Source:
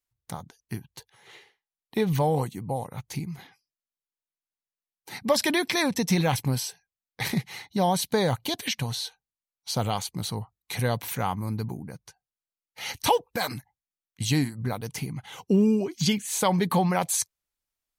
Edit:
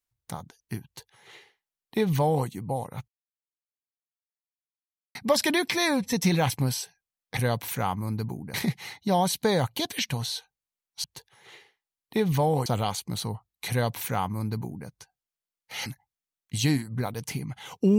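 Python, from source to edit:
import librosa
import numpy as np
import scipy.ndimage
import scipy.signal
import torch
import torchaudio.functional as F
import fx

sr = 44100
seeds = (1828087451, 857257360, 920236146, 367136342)

y = fx.edit(x, sr, fx.duplicate(start_s=0.85, length_s=1.62, to_s=9.73),
    fx.silence(start_s=3.08, length_s=2.07),
    fx.stretch_span(start_s=5.71, length_s=0.28, factor=1.5),
    fx.duplicate(start_s=10.77, length_s=1.17, to_s=7.23),
    fx.cut(start_s=12.93, length_s=0.6), tone=tone)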